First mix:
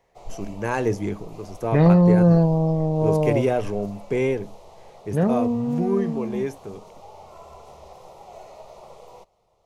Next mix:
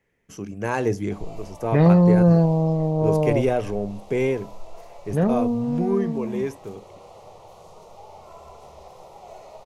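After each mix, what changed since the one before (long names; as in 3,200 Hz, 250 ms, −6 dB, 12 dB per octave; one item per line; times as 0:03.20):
background: entry +0.95 s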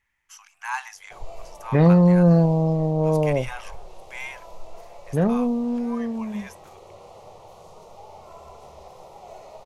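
first voice: add Butterworth high-pass 830 Hz 72 dB per octave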